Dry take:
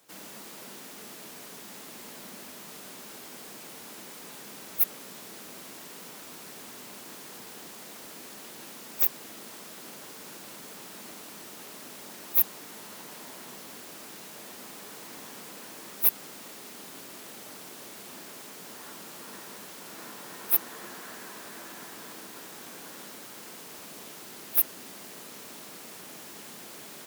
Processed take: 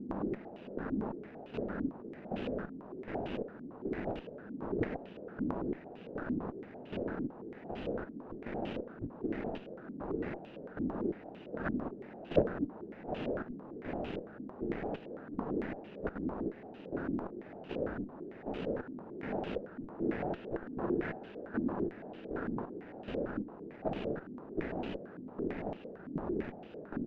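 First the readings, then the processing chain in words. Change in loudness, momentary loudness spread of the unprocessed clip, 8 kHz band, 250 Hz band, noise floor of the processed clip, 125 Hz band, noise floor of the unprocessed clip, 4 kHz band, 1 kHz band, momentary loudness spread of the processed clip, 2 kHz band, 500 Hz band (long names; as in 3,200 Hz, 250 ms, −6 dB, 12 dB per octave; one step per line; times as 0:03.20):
−5.0 dB, 17 LU, below −40 dB, +12.5 dB, −51 dBFS, +13.0 dB, −45 dBFS, −13.0 dB, +2.0 dB, 9 LU, −1.5 dB, +11.0 dB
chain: running median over 41 samples
high-frequency loss of the air 55 metres
on a send: backwards echo 718 ms −9.5 dB
on the sum: square-wave tremolo 1.3 Hz, depth 65%, duty 45%
in parallel at −5 dB: comparator with hysteresis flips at −49 dBFS
on the sum: low-pass on a step sequencer 8.9 Hz 270–2,900 Hz
level +11 dB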